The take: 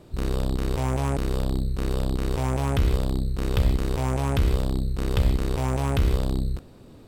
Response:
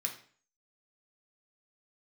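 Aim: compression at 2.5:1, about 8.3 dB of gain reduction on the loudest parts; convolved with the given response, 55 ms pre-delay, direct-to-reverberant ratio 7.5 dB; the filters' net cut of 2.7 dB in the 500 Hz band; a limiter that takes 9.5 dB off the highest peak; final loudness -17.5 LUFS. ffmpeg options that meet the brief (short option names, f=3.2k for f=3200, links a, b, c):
-filter_complex "[0:a]equalizer=f=500:t=o:g=-3.5,acompressor=threshold=-29dB:ratio=2.5,alimiter=level_in=1.5dB:limit=-24dB:level=0:latency=1,volume=-1.5dB,asplit=2[a][b];[1:a]atrim=start_sample=2205,adelay=55[c];[b][c]afir=irnorm=-1:irlink=0,volume=-9dB[d];[a][d]amix=inputs=2:normalize=0,volume=16.5dB"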